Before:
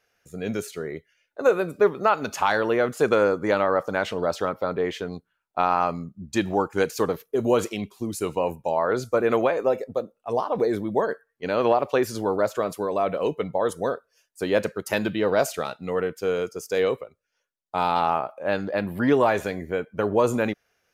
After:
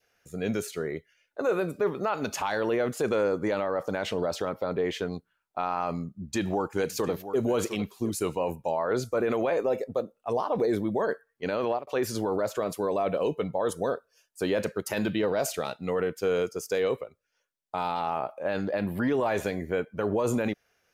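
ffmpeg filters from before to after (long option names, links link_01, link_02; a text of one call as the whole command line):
ffmpeg -i in.wav -filter_complex "[0:a]asettb=1/sr,asplit=3[link_01][link_02][link_03];[link_01]atrim=end=6.194[link_04];[link_02]atrim=start=6.19:end=8.1,asetpts=PTS-STARTPTS,afade=type=in:duration=0.004:curve=qsin,afade=type=out:start_time=1.906:duration=0.004:curve=qsin,aecho=1:1:704:0.15,atrim=end_sample=84231[link_05];[link_03]atrim=start=8.096[link_06];[link_04][link_05]acrossfade=duration=0.004:curve1=hsin:curve2=qsin[link_07];[link_07][link_06]acrossfade=duration=0.004:curve1=qsin:curve2=hsin,asettb=1/sr,asplit=3[link_08][link_09][link_10];[link_08]atrim=end=13.094[link_11];[link_09]atrim=start=13.09:end=14.48,asetpts=PTS-STARTPTS,afade=type=in:duration=0.004:curve=qsin,afade=type=out:start_time=1.386:duration=0.004:curve=qsin,bandreject=frequency=2000:width=8.2[link_12];[link_10]atrim=start=14.476[link_13];[link_11][link_12]acrossfade=duration=0.004:curve1=hsin:curve2=qsin[link_14];[link_14][link_13]acrossfade=duration=0.004:curve1=qsin:curve2=hsin,asplit=2[link_15][link_16];[link_15]atrim=end=11.87,asetpts=PTS-STARTPTS,afade=type=out:start_time=11.47:duration=0.4:curve=qsin[link_17];[link_16]atrim=start=11.87,asetpts=PTS-STARTPTS,afade=type=in:duration=0.004:curve=hsin[link_18];[link_17][link_18]concat=n=2:v=0:a=1,adynamicequalizer=threshold=0.0112:dfrequency=1300:dqfactor=1.8:tfrequency=1300:tqfactor=1.8:attack=5:release=100:ratio=0.375:range=2.5:mode=cutabove:tftype=bell,alimiter=limit=-18dB:level=0:latency=1:release=25" out.wav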